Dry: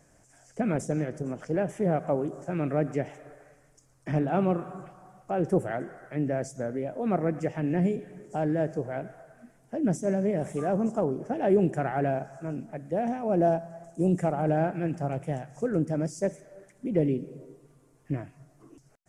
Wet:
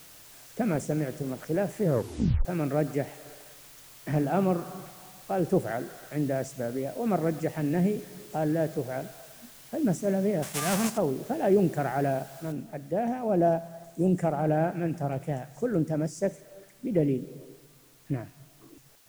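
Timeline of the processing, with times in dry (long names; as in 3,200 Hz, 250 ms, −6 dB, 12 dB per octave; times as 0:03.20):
0:01.83: tape stop 0.62 s
0:10.42–0:10.96: spectral envelope flattened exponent 0.3
0:12.52: noise floor change −51 dB −60 dB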